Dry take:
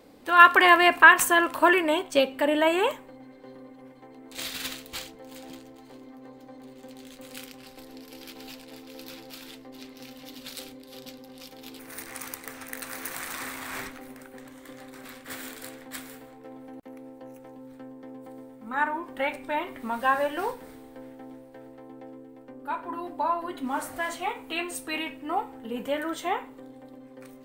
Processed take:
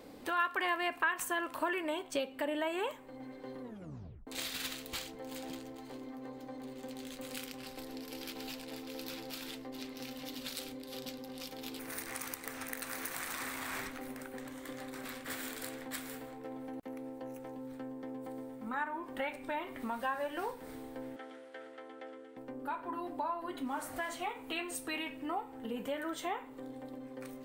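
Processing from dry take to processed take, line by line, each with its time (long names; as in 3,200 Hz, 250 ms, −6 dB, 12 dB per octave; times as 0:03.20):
0:03.62: tape stop 0.65 s
0:21.16–0:22.37: loudspeaker in its box 480–9,800 Hz, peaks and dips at 920 Hz −8 dB, 1,400 Hz +9 dB, 2,000 Hz +5 dB, 3,200 Hz +8 dB, 8,500 Hz −3 dB
whole clip: downward compressor 2.5 to 1, threshold −40 dBFS; level +1 dB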